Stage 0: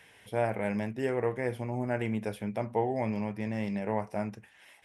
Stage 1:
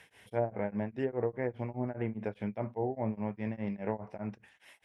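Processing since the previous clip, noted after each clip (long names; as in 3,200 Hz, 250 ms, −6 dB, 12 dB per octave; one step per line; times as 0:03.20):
treble cut that deepens with the level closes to 680 Hz, closed at −24.5 dBFS
tremolo along a rectified sine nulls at 4.9 Hz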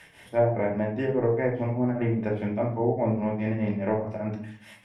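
rectangular room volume 580 cubic metres, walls furnished, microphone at 2.6 metres
level +5 dB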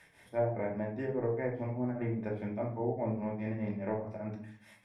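notch filter 2,900 Hz, Q 5
level −8.5 dB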